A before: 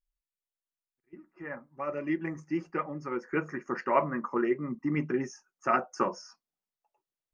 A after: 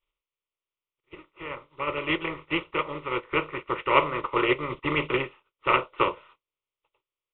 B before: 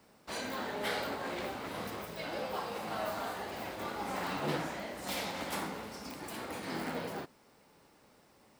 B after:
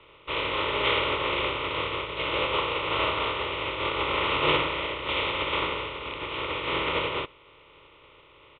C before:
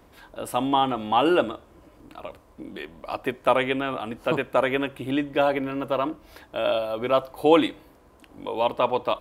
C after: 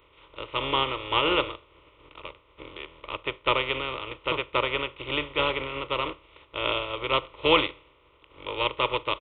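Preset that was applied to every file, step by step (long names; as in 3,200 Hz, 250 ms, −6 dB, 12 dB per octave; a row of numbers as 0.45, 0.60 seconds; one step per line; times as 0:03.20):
compressing power law on the bin magnitudes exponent 0.42
downsampling to 8,000 Hz
phaser with its sweep stopped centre 1,100 Hz, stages 8
loudness normalisation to −27 LKFS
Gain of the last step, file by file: +7.0, +15.5, −1.0 decibels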